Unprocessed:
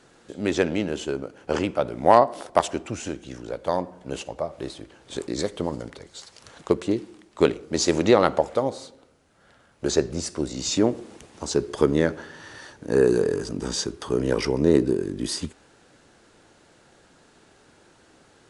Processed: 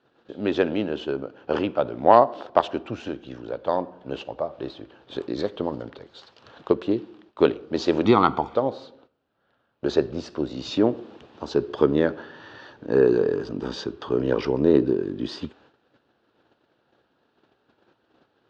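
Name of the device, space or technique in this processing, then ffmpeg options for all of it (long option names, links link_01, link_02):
guitar cabinet: -filter_complex "[0:a]asettb=1/sr,asplit=3[link_01][link_02][link_03];[link_01]atrim=end=8.054[link_04];[link_02]atrim=start=8.05:end=8.55,asetpts=PTS-STARTPTS,afade=type=in:duration=0.004:curve=qsin,afade=type=out:start_time=0.496:duration=0.004:curve=qsin,aecho=1:1:0.9:0.89,atrim=end_sample=22050[link_05];[link_03]atrim=start=8.546[link_06];[link_04][link_05]acrossfade=duration=0.004:curve1=hsin:curve2=qsin[link_07];[link_07][link_06]acrossfade=duration=0.004:curve1=qsin:curve2=hsin,highpass=84,equalizer=frequency=88:width_type=q:width=4:gain=-5,equalizer=frequency=170:width_type=q:width=4:gain=-6,equalizer=frequency=2100:width_type=q:width=4:gain=-9,lowpass=frequency=3800:width=0.5412,lowpass=frequency=3800:width=1.3066,agate=range=-12dB:threshold=-55dB:ratio=16:detection=peak,volume=1dB"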